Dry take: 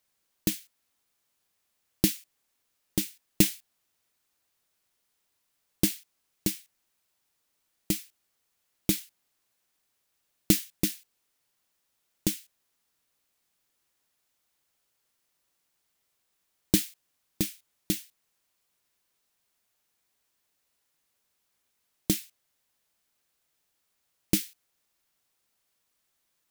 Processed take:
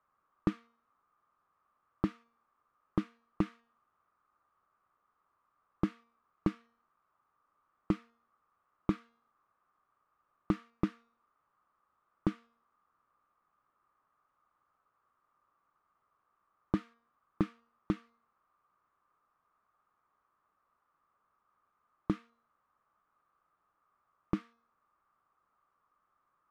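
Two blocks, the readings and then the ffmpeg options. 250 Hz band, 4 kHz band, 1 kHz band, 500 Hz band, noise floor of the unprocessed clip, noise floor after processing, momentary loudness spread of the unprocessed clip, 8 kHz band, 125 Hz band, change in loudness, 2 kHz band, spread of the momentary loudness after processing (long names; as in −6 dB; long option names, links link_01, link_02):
−4.0 dB, −23.0 dB, +7.0 dB, −3.5 dB, −77 dBFS, −80 dBFS, 14 LU, below −35 dB, −4.0 dB, −8.0 dB, −10.0 dB, 2 LU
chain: -af "alimiter=limit=-11.5dB:level=0:latency=1:release=338,lowpass=frequency=1200:width_type=q:width=10,bandreject=frequency=232.7:width_type=h:width=4,bandreject=frequency=465.4:width_type=h:width=4,bandreject=frequency=698.1:width_type=h:width=4,bandreject=frequency=930.8:width_type=h:width=4,bandreject=frequency=1163.5:width_type=h:width=4,bandreject=frequency=1396.2:width_type=h:width=4,bandreject=frequency=1628.9:width_type=h:width=4,bandreject=frequency=1861.6:width_type=h:width=4,bandreject=frequency=2094.3:width_type=h:width=4,bandreject=frequency=2327:width_type=h:width=4,bandreject=frequency=2559.7:width_type=h:width=4,bandreject=frequency=2792.4:width_type=h:width=4,bandreject=frequency=3025.1:width_type=h:width=4,bandreject=frequency=3257.8:width_type=h:width=4,bandreject=frequency=3490.5:width_type=h:width=4,bandreject=frequency=3723.2:width_type=h:width=4,bandreject=frequency=3955.9:width_type=h:width=4,bandreject=frequency=4188.6:width_type=h:width=4,bandreject=frequency=4421.3:width_type=h:width=4,bandreject=frequency=4654:width_type=h:width=4,bandreject=frequency=4886.7:width_type=h:width=4,bandreject=frequency=5119.4:width_type=h:width=4,bandreject=frequency=5352.1:width_type=h:width=4,bandreject=frequency=5584.8:width_type=h:width=4,bandreject=frequency=5817.5:width_type=h:width=4,bandreject=frequency=6050.2:width_type=h:width=4,bandreject=frequency=6282.9:width_type=h:width=4,bandreject=frequency=6515.6:width_type=h:width=4,bandreject=frequency=6748.3:width_type=h:width=4"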